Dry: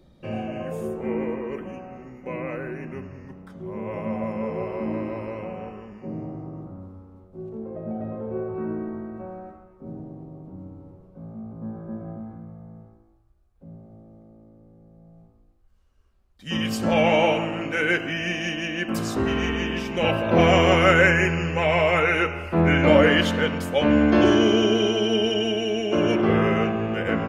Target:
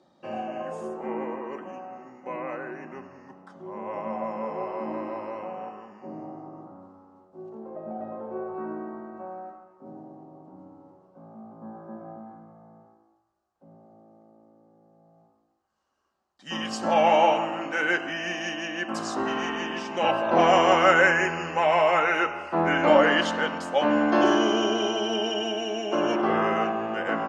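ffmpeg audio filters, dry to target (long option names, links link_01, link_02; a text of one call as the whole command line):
ffmpeg -i in.wav -af "highpass=330,equalizer=frequency=450:width_type=q:width=4:gain=-7,equalizer=frequency=810:width_type=q:width=4:gain=6,equalizer=frequency=1100:width_type=q:width=4:gain=3,equalizer=frequency=2300:width_type=q:width=4:gain=-8,equalizer=frequency=3500:width_type=q:width=4:gain=-5,lowpass=frequency=7800:width=0.5412,lowpass=frequency=7800:width=1.3066" out.wav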